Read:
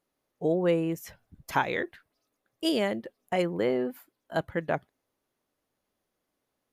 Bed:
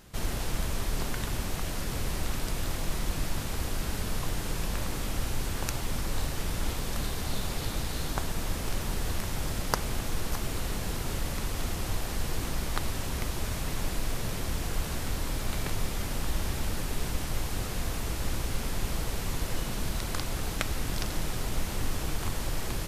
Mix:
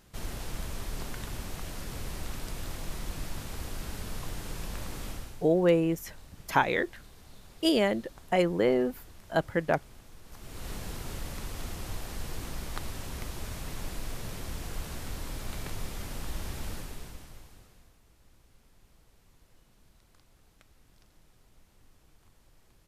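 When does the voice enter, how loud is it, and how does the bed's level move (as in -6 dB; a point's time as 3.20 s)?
5.00 s, +2.0 dB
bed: 5.10 s -6 dB
5.50 s -20.5 dB
10.23 s -20.5 dB
10.69 s -6 dB
16.73 s -6 dB
17.99 s -30.5 dB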